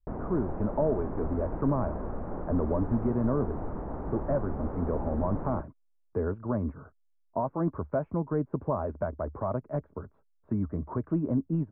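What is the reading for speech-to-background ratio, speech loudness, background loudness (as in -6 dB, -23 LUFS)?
6.5 dB, -31.5 LUFS, -38.0 LUFS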